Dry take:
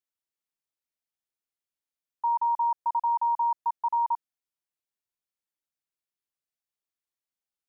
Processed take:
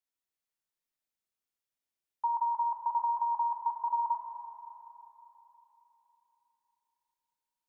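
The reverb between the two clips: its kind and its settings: Schroeder reverb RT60 3.7 s, combs from 25 ms, DRR 1.5 dB; gain -2.5 dB

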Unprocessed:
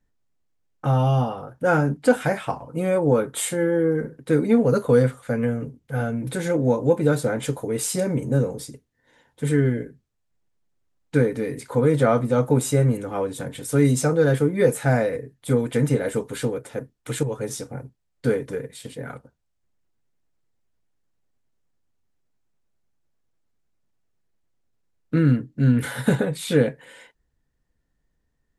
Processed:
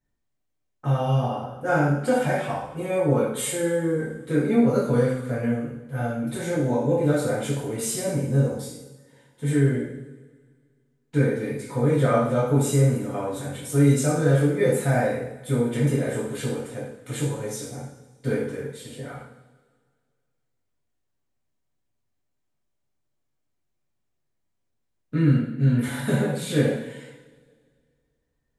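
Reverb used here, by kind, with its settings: two-slope reverb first 0.7 s, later 2 s, DRR -7 dB; gain -9 dB

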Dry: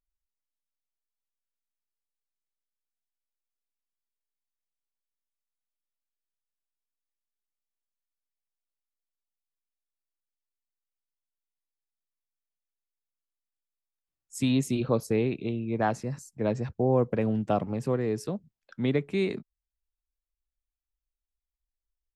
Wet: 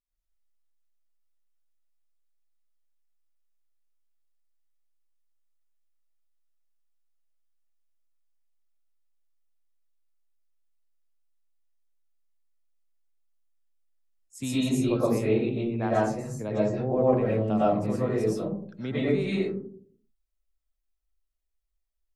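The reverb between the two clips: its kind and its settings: digital reverb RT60 0.57 s, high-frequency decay 0.3×, pre-delay 75 ms, DRR -8.5 dB; gain -7 dB

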